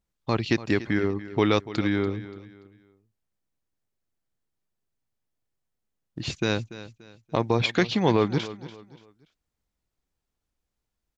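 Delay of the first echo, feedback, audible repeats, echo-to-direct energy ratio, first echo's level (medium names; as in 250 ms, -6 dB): 289 ms, 33%, 3, -15.0 dB, -15.5 dB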